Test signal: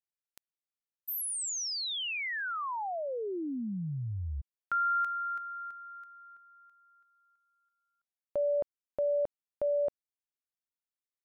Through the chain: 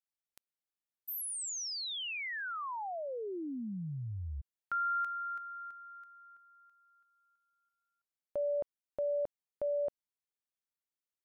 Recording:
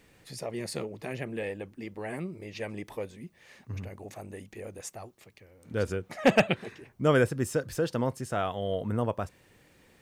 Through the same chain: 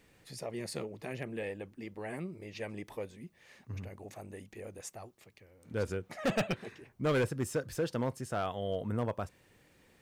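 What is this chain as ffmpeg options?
-af "asoftclip=type=hard:threshold=-21dB,volume=-4dB"

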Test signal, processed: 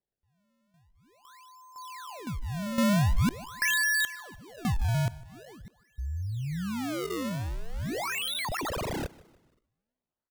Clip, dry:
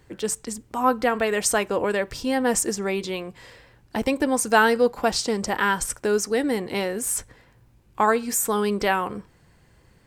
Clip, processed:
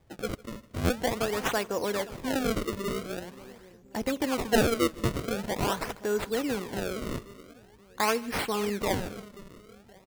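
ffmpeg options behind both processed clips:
-filter_complex "[0:a]asplit=2[a][b];[b]adelay=527,lowpass=f=800:p=1,volume=-16dB,asplit=2[c][d];[d]adelay=527,lowpass=f=800:p=1,volume=0.49,asplit=2[e][f];[f]adelay=527,lowpass=f=800:p=1,volume=0.49,asplit=2[g][h];[h]adelay=527,lowpass=f=800:p=1,volume=0.49[i];[c][e][g][i]amix=inputs=4:normalize=0[j];[a][j]amix=inputs=2:normalize=0,acrusher=samples=31:mix=1:aa=0.000001:lfo=1:lforange=49.6:lforate=0.45,asplit=2[k][l];[l]aecho=0:1:153|306|459:0.0794|0.0318|0.0127[m];[k][m]amix=inputs=2:normalize=0,volume=-6.5dB"

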